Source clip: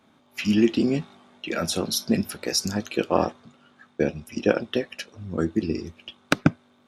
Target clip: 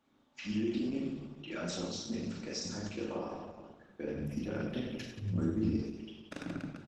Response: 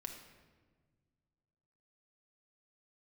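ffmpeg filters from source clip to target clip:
-filter_complex "[0:a]aecho=1:1:40|96|174.4|284.2|437.8:0.631|0.398|0.251|0.158|0.1,alimiter=limit=0.2:level=0:latency=1:release=65[s0];[1:a]atrim=start_sample=2205,asetrate=61740,aresample=44100[s1];[s0][s1]afir=irnorm=-1:irlink=0,asplit=3[s2][s3][s4];[s2]afade=t=out:st=4.15:d=0.02[s5];[s3]asubboost=boost=4:cutoff=220,afade=t=in:st=4.15:d=0.02,afade=t=out:st=5.82:d=0.02[s6];[s4]afade=t=in:st=5.82:d=0.02[s7];[s5][s6][s7]amix=inputs=3:normalize=0,volume=0.447" -ar 48000 -c:a libopus -b:a 12k

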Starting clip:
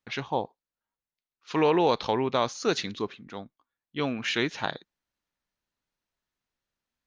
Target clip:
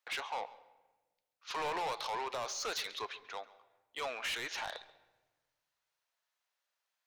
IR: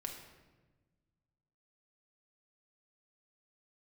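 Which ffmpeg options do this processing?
-filter_complex "[0:a]highpass=f=580:w=0.5412,highpass=f=580:w=1.3066,alimiter=limit=0.0794:level=0:latency=1:release=60,asoftclip=type=tanh:threshold=0.0178,asplit=2[s0][s1];[1:a]atrim=start_sample=2205,lowpass=6200,adelay=136[s2];[s1][s2]afir=irnorm=-1:irlink=0,volume=0.168[s3];[s0][s3]amix=inputs=2:normalize=0,volume=1.26"

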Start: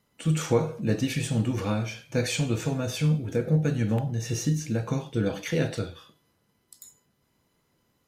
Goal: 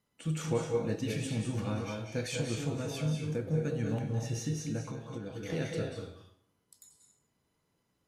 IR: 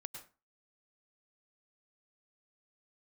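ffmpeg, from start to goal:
-filter_complex "[1:a]atrim=start_sample=2205,asetrate=23373,aresample=44100[s0];[0:a][s0]afir=irnorm=-1:irlink=0,asettb=1/sr,asplit=3[s1][s2][s3];[s1]atrim=end=4.854[s4];[s2]atrim=start=4.85:end=5.5,asetpts=PTS-STARTPTS,afade=t=in:d=0.004:c=qsin,afade=t=out:st=0.646:d=0.004:c=qsin,acompressor=threshold=0.0316:ratio=6[s5];[s3]atrim=start=5.496[s6];[s4][s5]acrossfade=d=0.004:c1=hsin:c2=qsin[s7];[s7][s6]acrossfade=d=0.004:c1=qsin:c2=hsin,volume=0.447"

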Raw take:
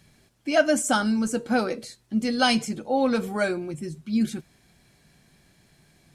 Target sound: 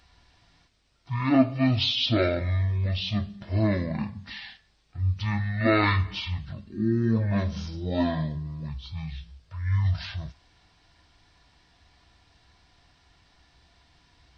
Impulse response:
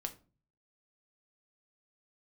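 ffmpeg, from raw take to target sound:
-af "highshelf=f=9800:g=11,asetrate=18846,aresample=44100,volume=0.794"

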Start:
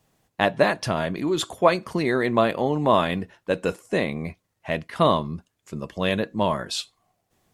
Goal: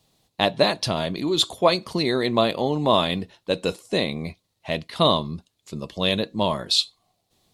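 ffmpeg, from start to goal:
-af "equalizer=f=1600:t=o:w=0.67:g=-7,equalizer=f=4000:t=o:w=0.67:g=12,equalizer=f=10000:t=o:w=0.67:g=3"

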